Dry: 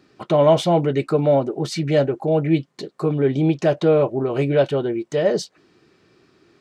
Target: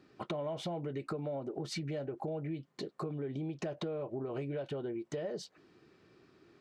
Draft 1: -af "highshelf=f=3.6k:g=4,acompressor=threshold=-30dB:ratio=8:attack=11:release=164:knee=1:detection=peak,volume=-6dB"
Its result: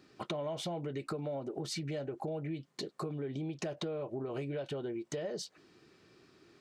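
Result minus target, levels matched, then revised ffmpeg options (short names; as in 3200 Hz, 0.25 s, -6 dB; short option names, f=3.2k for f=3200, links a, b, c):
8000 Hz band +5.5 dB
-af "highshelf=f=3.6k:g=-6,acompressor=threshold=-30dB:ratio=8:attack=11:release=164:knee=1:detection=peak,volume=-6dB"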